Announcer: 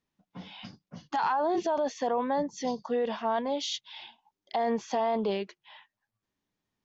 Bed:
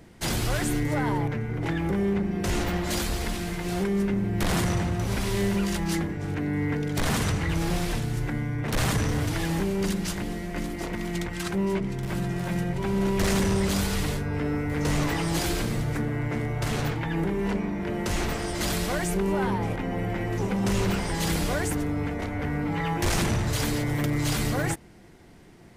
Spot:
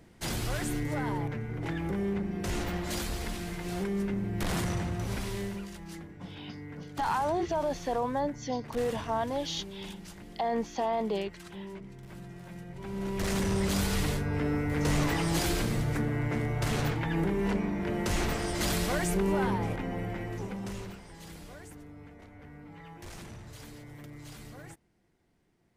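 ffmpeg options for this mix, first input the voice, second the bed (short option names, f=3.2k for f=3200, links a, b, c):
-filter_complex "[0:a]adelay=5850,volume=-2dB[a];[1:a]volume=8.5dB,afade=t=out:st=5.11:d=0.6:silence=0.298538,afade=t=in:st=12.67:d=1.29:silence=0.188365,afade=t=out:st=19.36:d=1.63:silence=0.11885[b];[a][b]amix=inputs=2:normalize=0"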